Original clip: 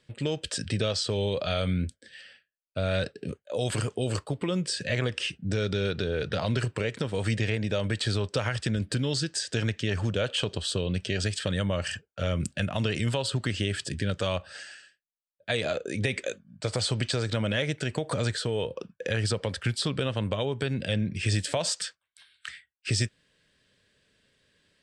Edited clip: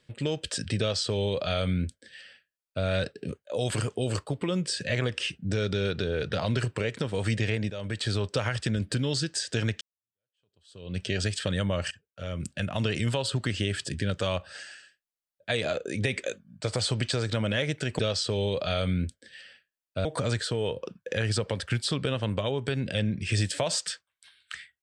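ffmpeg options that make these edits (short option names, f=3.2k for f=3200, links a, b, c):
-filter_complex "[0:a]asplit=6[a][b][c][d][e][f];[a]atrim=end=7.7,asetpts=PTS-STARTPTS,afade=t=out:st=7.696:d=0.004:c=hsin:silence=0.237137[g];[b]atrim=start=7.7:end=9.81,asetpts=PTS-STARTPTS,afade=t=in:d=0.6:c=qsin:silence=0.237137,afade=t=out:st=2.106:d=0.004:c=hsin[h];[c]atrim=start=9.81:end=11.91,asetpts=PTS-STARTPTS,afade=t=in:d=1.18:c=exp,afade=t=out:st=2.096:d=0.004:c=hsin:silence=0.0944061[i];[d]atrim=start=11.91:end=17.992,asetpts=PTS-STARTPTS,afade=t=in:d=0.92:silence=0.0944061[j];[e]atrim=start=0.788:end=2.852[k];[f]atrim=start=17.988[l];[g][h][i][j]concat=n=4:v=0:a=1[m];[m][k]acrossfade=d=0.004:c1=hsin:c2=hsin[n];[n][l]acrossfade=d=0.004:c1=hsin:c2=hsin"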